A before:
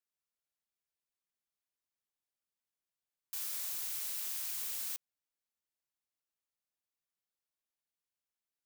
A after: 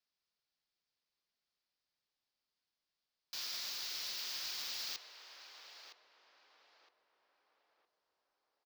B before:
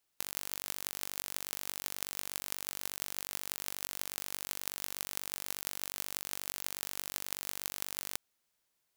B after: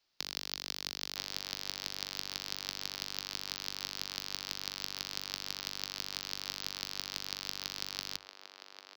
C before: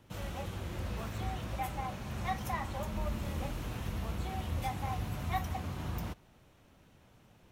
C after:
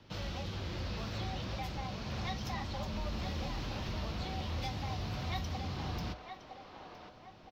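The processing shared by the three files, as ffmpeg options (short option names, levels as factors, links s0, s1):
-filter_complex "[0:a]bandreject=f=60:t=h:w=6,bandreject=f=120:t=h:w=6,acrossover=split=350|3000[s0][s1][s2];[s1]acompressor=threshold=0.00355:ratio=2.5[s3];[s0][s3][s2]amix=inputs=3:normalize=0,highshelf=f=6700:t=q:w=3:g=-12.5,acrossover=split=350[s4][s5];[s4]asoftclip=type=tanh:threshold=0.015[s6];[s5]asplit=2[s7][s8];[s8]adelay=963,lowpass=f=1300:p=1,volume=0.668,asplit=2[s9][s10];[s10]adelay=963,lowpass=f=1300:p=1,volume=0.53,asplit=2[s11][s12];[s12]adelay=963,lowpass=f=1300:p=1,volume=0.53,asplit=2[s13][s14];[s14]adelay=963,lowpass=f=1300:p=1,volume=0.53,asplit=2[s15][s16];[s16]adelay=963,lowpass=f=1300:p=1,volume=0.53,asplit=2[s17][s18];[s18]adelay=963,lowpass=f=1300:p=1,volume=0.53,asplit=2[s19][s20];[s20]adelay=963,lowpass=f=1300:p=1,volume=0.53[s21];[s7][s9][s11][s13][s15][s17][s19][s21]amix=inputs=8:normalize=0[s22];[s6][s22]amix=inputs=2:normalize=0,volume=1.33"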